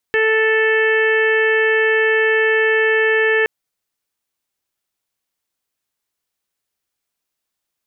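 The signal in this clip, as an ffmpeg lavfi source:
-f lavfi -i "aevalsrc='0.168*sin(2*PI*440*t)+0.0335*sin(2*PI*880*t)+0.0299*sin(2*PI*1320*t)+0.158*sin(2*PI*1760*t)+0.0531*sin(2*PI*2200*t)+0.0501*sin(2*PI*2640*t)+0.0211*sin(2*PI*3080*t)':d=3.32:s=44100"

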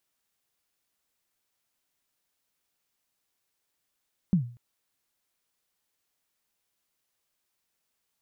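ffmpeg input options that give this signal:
-f lavfi -i "aevalsrc='0.168*pow(10,-3*t/0.41)*sin(2*PI*(200*0.104/log(120/200)*(exp(log(120/200)*min(t,0.104)/0.104)-1)+120*max(t-0.104,0)))':d=0.24:s=44100"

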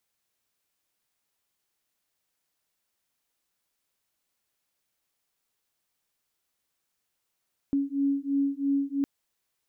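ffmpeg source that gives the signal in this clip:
-f lavfi -i "aevalsrc='0.0447*(sin(2*PI*277*t)+sin(2*PI*280*t))':d=1.31:s=44100"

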